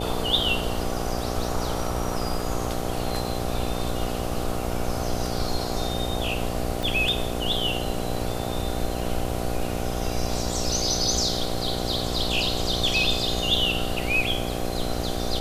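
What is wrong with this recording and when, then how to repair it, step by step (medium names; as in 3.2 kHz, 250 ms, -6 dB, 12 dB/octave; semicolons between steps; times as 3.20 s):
buzz 60 Hz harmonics 13 -30 dBFS
6.83 s: pop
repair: de-click; de-hum 60 Hz, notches 13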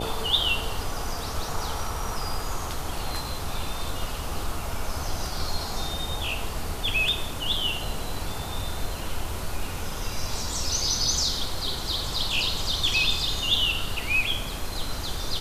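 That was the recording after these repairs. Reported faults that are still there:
nothing left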